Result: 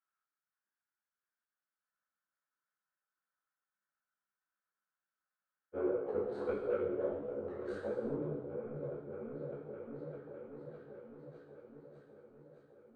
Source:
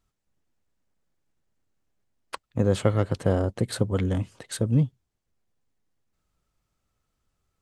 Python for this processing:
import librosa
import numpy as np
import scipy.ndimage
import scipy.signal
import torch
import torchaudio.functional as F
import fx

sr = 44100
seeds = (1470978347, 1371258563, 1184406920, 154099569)

p1 = scipy.signal.sosfilt(scipy.signal.butter(2, 120.0, 'highpass', fs=sr, output='sos'), x)
p2 = fx.high_shelf(p1, sr, hz=3300.0, db=-10.5)
p3 = fx.auto_wah(p2, sr, base_hz=430.0, top_hz=1500.0, q=4.8, full_db=-21.0, direction='down')
p4 = fx.rider(p3, sr, range_db=10, speed_s=0.5)
p5 = 10.0 ** (-28.0 / 20.0) * np.tanh(p4 / 10.0 ** (-28.0 / 20.0))
p6 = fx.stretch_grains(p5, sr, factor=1.7, grain_ms=68.0)
p7 = p6 + fx.echo_opening(p6, sr, ms=607, hz=200, octaves=1, feedback_pct=70, wet_db=-3, dry=0)
p8 = fx.rev_gated(p7, sr, seeds[0], gate_ms=430, shape='falling', drr_db=-1.5)
p9 = fx.spec_freeze(p8, sr, seeds[1], at_s=1.83, hold_s=3.91)
p10 = fx.detune_double(p9, sr, cents=52)
y = p10 * 10.0 ** (3.0 / 20.0)